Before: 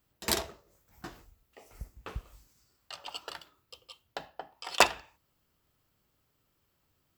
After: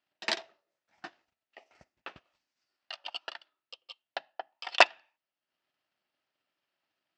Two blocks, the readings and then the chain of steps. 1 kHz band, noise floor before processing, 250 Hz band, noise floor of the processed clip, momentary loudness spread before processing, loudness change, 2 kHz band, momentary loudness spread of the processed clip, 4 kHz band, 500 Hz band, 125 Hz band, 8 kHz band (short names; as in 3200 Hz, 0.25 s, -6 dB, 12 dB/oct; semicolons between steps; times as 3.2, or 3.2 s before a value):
+0.5 dB, -76 dBFS, -7.5 dB, under -85 dBFS, 24 LU, +2.0 dB, +3.5 dB, 26 LU, +1.0 dB, +1.0 dB, under -15 dB, -10.5 dB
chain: transient shaper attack +8 dB, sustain -8 dB; speaker cabinet 390–5200 Hz, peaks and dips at 450 Hz -9 dB, 660 Hz +4 dB, 1100 Hz -4 dB, 1800 Hz +4 dB, 2700 Hz +4 dB; gain -5.5 dB